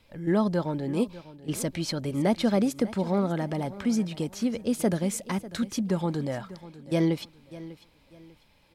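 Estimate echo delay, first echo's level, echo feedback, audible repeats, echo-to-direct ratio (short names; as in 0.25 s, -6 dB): 0.596 s, -17.0 dB, 31%, 2, -16.5 dB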